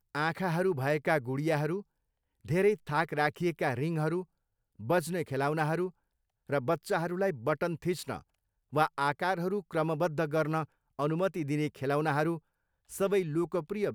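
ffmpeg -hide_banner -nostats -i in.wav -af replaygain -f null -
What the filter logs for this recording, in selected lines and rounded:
track_gain = +11.8 dB
track_peak = 0.167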